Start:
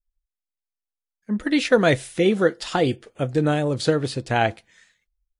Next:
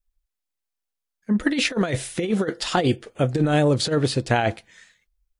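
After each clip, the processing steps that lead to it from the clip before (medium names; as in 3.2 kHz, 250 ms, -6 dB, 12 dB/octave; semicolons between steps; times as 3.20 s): compressor with a negative ratio -21 dBFS, ratio -0.5; trim +2 dB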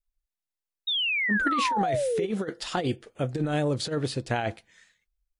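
painted sound fall, 0.87–2.26 s, 380–3800 Hz -19 dBFS; trim -7.5 dB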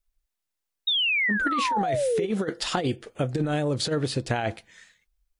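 compression, threshold -28 dBFS, peak gain reduction 7.5 dB; trim +6 dB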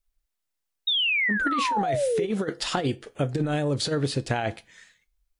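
feedback comb 140 Hz, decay 0.29 s, harmonics all, mix 40%; trim +3.5 dB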